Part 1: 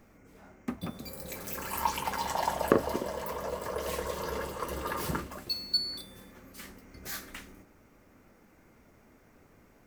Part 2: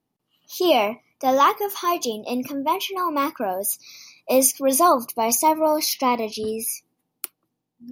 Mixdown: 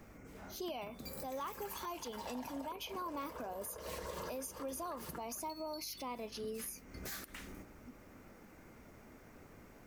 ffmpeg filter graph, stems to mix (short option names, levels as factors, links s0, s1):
-filter_complex "[0:a]acompressor=threshold=0.0126:ratio=6,volume=1.33[s0];[1:a]acompressor=threshold=0.0891:ratio=6,aeval=exprs='val(0)+0.00398*(sin(2*PI*50*n/s)+sin(2*PI*2*50*n/s)/2+sin(2*PI*3*50*n/s)/3+sin(2*PI*4*50*n/s)/4+sin(2*PI*5*50*n/s)/5)':c=same,volume=0.178,asplit=2[s1][s2];[s2]apad=whole_len=435192[s3];[s0][s3]sidechaincompress=threshold=0.00355:ratio=10:attack=35:release=414[s4];[s4][s1]amix=inputs=2:normalize=0,alimiter=level_in=2.99:limit=0.0631:level=0:latency=1:release=100,volume=0.335"